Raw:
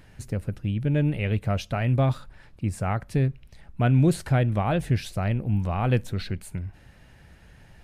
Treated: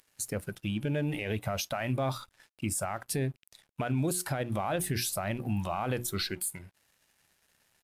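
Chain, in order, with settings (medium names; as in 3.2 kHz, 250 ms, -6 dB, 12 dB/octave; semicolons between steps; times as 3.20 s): RIAA curve recording; hum notches 60/120/180/240/300/360 Hz; spectral noise reduction 11 dB; dynamic bell 2.9 kHz, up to -8 dB, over -47 dBFS, Q 0.86; in parallel at +3 dB: compression, threshold -34 dBFS, peak gain reduction 11 dB; on the sum: peak limiter -22 dBFS, peak gain reduction 12 dB; crossover distortion -56 dBFS; resampled via 32 kHz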